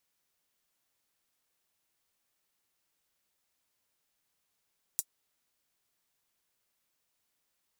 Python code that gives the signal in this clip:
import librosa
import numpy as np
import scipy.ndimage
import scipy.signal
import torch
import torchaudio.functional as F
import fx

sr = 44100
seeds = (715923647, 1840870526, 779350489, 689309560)

y = fx.drum_hat(sr, length_s=0.24, from_hz=7200.0, decay_s=0.06)